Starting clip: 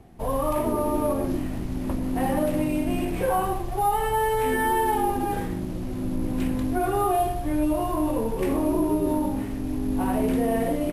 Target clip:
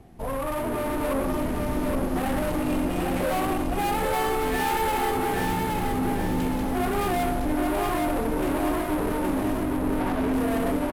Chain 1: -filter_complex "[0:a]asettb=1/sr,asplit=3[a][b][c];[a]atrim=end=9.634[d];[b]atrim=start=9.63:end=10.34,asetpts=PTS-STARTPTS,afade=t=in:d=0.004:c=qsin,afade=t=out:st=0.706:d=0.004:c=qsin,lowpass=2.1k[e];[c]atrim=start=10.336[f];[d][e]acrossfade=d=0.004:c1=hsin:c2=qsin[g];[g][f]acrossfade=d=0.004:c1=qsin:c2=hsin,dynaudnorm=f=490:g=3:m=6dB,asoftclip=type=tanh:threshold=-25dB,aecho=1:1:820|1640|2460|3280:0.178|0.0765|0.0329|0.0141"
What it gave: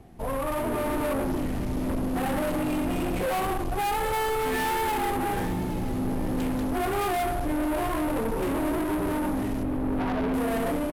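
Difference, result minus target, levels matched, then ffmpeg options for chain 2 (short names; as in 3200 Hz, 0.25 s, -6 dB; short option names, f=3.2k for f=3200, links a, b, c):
echo-to-direct -12 dB
-filter_complex "[0:a]asettb=1/sr,asplit=3[a][b][c];[a]atrim=end=9.634[d];[b]atrim=start=9.63:end=10.34,asetpts=PTS-STARTPTS,afade=t=in:d=0.004:c=qsin,afade=t=out:st=0.706:d=0.004:c=qsin,lowpass=2.1k[e];[c]atrim=start=10.336[f];[d][e]acrossfade=d=0.004:c1=hsin:c2=qsin[g];[g][f]acrossfade=d=0.004:c1=qsin:c2=hsin,dynaudnorm=f=490:g=3:m=6dB,asoftclip=type=tanh:threshold=-25dB,aecho=1:1:820|1640|2460|3280|4100|4920:0.708|0.304|0.131|0.0563|0.0242|0.0104"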